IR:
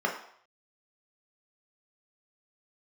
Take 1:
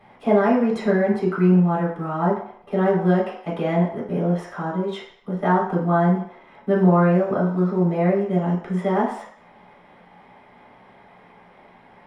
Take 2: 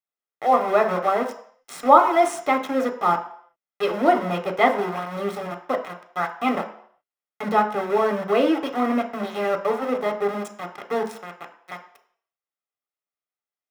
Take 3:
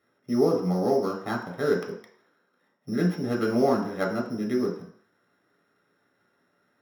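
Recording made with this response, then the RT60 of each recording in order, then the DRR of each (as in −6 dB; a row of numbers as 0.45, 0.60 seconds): 3; 0.65, 0.65, 0.65 seconds; −6.0, 4.5, −0.5 decibels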